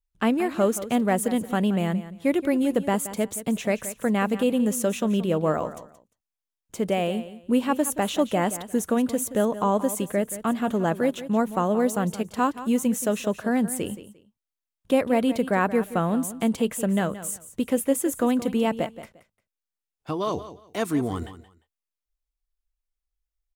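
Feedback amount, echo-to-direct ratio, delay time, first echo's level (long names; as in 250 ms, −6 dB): 22%, −14.0 dB, 175 ms, −14.0 dB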